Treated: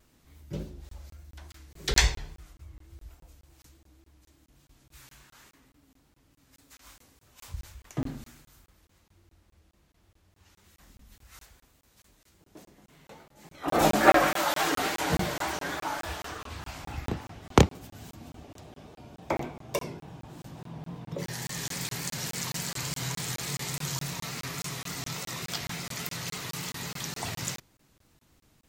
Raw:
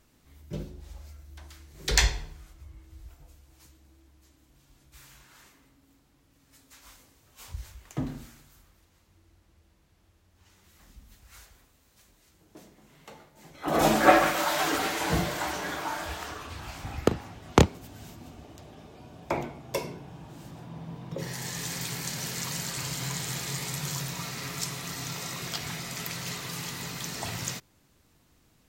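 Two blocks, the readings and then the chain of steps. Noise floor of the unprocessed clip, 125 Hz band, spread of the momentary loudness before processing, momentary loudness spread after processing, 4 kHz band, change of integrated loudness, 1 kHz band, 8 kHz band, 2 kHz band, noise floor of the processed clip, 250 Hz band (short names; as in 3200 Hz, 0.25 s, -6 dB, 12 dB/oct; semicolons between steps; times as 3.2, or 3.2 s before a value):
-65 dBFS, -0.5 dB, 22 LU, 22 LU, -0.5 dB, -0.5 dB, -0.5 dB, -0.5 dB, -0.5 dB, -70 dBFS, -1.0 dB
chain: vibrato 3.5 Hz 76 cents; crackling interface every 0.21 s, samples 1024, zero, from 0.89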